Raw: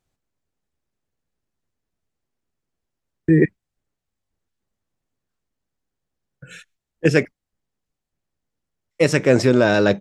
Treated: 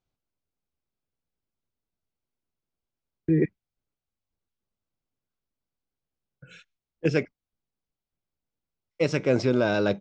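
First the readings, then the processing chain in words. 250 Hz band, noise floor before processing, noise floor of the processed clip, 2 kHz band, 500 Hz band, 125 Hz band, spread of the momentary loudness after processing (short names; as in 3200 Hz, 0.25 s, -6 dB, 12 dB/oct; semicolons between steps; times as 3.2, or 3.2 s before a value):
-7.5 dB, -83 dBFS, under -85 dBFS, -9.5 dB, -7.5 dB, -7.5 dB, 7 LU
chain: LPF 5900 Hz 24 dB/oct; notch 1800 Hz, Q 6.7; gain -7.5 dB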